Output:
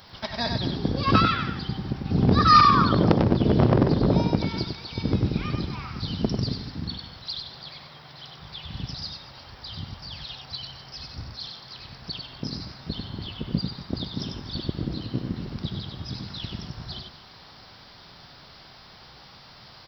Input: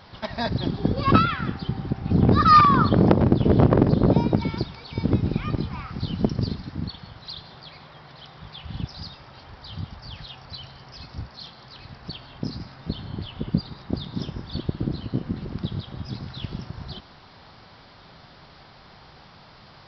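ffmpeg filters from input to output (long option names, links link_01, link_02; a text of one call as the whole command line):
ffmpeg -i in.wav -filter_complex "[0:a]aemphasis=mode=production:type=75fm,asplit=2[link_01][link_02];[link_02]aecho=0:1:80|96|239:0.15|0.531|0.141[link_03];[link_01][link_03]amix=inputs=2:normalize=0,volume=-2.5dB" out.wav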